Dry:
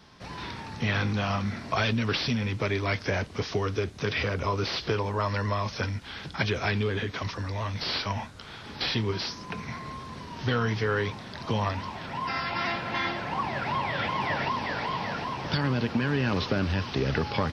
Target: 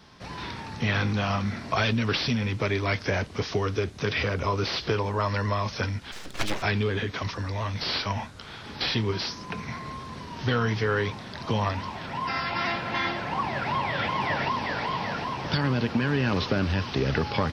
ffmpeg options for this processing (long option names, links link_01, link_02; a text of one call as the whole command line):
ffmpeg -i in.wav -filter_complex "[0:a]asplit=3[link_01][link_02][link_03];[link_01]afade=type=out:start_time=6.11:duration=0.02[link_04];[link_02]aeval=exprs='abs(val(0))':channel_layout=same,afade=type=in:start_time=6.11:duration=0.02,afade=type=out:start_time=6.61:duration=0.02[link_05];[link_03]afade=type=in:start_time=6.61:duration=0.02[link_06];[link_04][link_05][link_06]amix=inputs=3:normalize=0,volume=1.5dB" out.wav